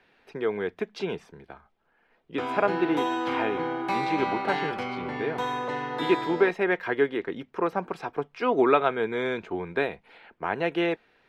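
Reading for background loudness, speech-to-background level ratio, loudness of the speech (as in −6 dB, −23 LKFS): −30.0 LKFS, 1.5 dB, −28.5 LKFS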